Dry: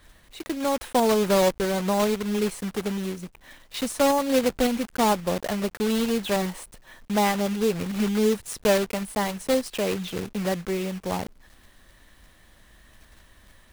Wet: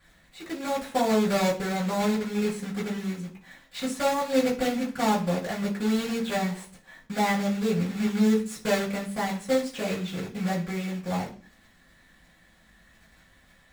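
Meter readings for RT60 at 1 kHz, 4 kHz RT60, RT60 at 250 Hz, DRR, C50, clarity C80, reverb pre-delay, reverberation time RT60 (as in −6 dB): 0.40 s, 0.50 s, 0.60 s, −11.0 dB, 10.5 dB, 16.0 dB, 3 ms, 0.45 s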